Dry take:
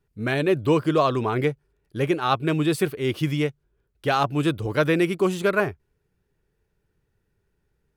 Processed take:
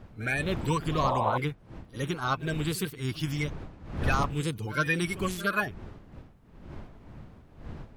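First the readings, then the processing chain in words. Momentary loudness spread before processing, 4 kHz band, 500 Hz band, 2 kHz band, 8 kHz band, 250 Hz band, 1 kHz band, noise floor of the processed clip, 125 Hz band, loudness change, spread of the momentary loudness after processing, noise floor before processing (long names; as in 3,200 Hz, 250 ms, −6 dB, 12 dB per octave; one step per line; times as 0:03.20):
7 LU, −4.5 dB, −11.0 dB, −2.5 dB, 0.0 dB, −8.5 dB, −4.0 dB, −54 dBFS, −4.0 dB, −6.5 dB, 20 LU, −73 dBFS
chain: spectral magnitudes quantised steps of 30 dB
wind on the microphone 370 Hz −35 dBFS
parametric band 420 Hz −12 dB 2.5 octaves
sound drawn into the spectrogram noise, 0:01.03–0:01.38, 490–1,100 Hz −28 dBFS
backwards echo 63 ms −16.5 dB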